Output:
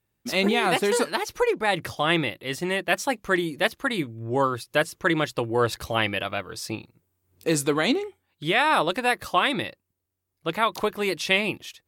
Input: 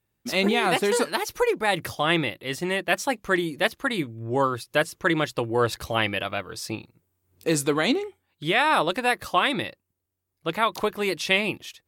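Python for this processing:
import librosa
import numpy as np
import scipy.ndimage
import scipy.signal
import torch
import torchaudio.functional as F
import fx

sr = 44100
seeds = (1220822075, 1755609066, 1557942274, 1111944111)

y = fx.high_shelf(x, sr, hz=10000.0, db=-8.0, at=(1.12, 1.97))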